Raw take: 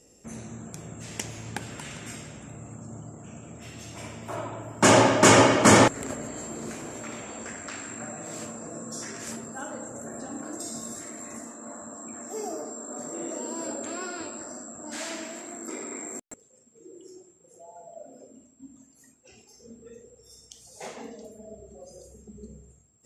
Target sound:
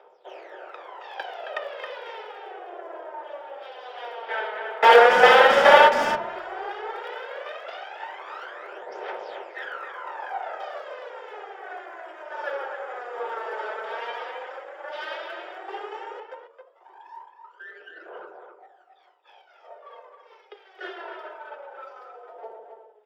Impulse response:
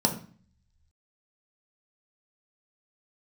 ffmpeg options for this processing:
-filter_complex "[0:a]equalizer=f=720:w=1.3:g=4.5,aeval=exprs='abs(val(0))':c=same,highpass=f=160:t=q:w=0.5412,highpass=f=160:t=q:w=1.307,lowpass=f=3.4k:t=q:w=0.5176,lowpass=f=3.4k:t=q:w=0.7071,lowpass=f=3.4k:t=q:w=1.932,afreqshift=230,aphaser=in_gain=1:out_gain=1:delay=4.7:decay=0.73:speed=0.11:type=triangular,asplit=2[a][b];[b]asoftclip=type=tanh:threshold=-23dB,volume=-12dB[c];[a][c]amix=inputs=2:normalize=0,aemphasis=mode=production:type=cd,asplit=2[d][e];[e]adelay=270,highpass=300,lowpass=3.4k,asoftclip=type=hard:threshold=-17.5dB,volume=-6dB[f];[d][f]amix=inputs=2:normalize=0,asplit=2[g][h];[1:a]atrim=start_sample=2205,lowpass=3.7k[i];[h][i]afir=irnorm=-1:irlink=0,volume=-10.5dB[j];[g][j]amix=inputs=2:normalize=0,volume=-3dB"

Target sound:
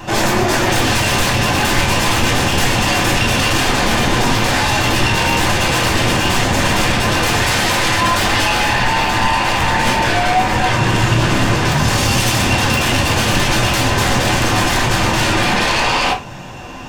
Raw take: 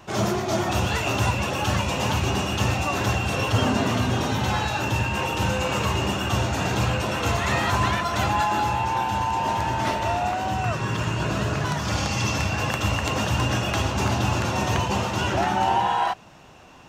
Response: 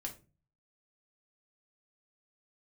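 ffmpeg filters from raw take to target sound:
-filter_complex "[0:a]aeval=exprs='0.316*sin(PI/2*5.62*val(0)/0.316)':c=same[a];[1:a]atrim=start_sample=2205[b];[a][b]afir=irnorm=-1:irlink=0,volume=-1dB"

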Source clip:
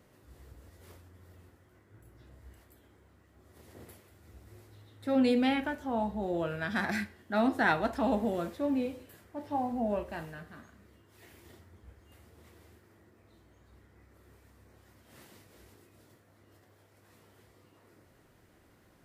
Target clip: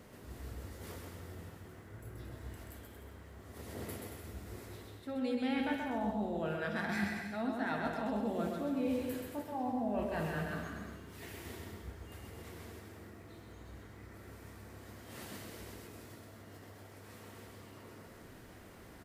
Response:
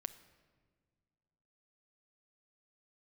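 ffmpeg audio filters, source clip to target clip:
-filter_complex "[0:a]areverse,acompressor=threshold=-42dB:ratio=10,areverse,aecho=1:1:130|227.5|300.6|355.5|396.6:0.631|0.398|0.251|0.158|0.1[a];[1:a]atrim=start_sample=2205,asetrate=66150,aresample=44100[b];[a][b]afir=irnorm=-1:irlink=0,volume=13.5dB"

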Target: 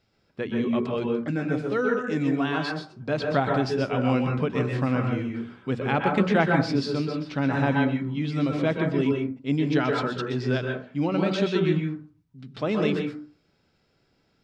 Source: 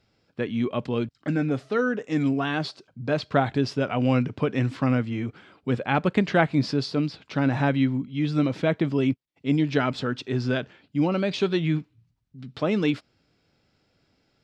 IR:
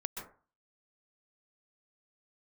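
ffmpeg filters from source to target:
-filter_complex "[0:a]bandreject=f=60:t=h:w=6,bandreject=f=120:t=h:w=6,bandreject=f=180:t=h:w=6,bandreject=f=240:t=h:w=6,bandreject=f=300:t=h:w=6[a];[1:a]atrim=start_sample=2205[b];[a][b]afir=irnorm=-1:irlink=0"

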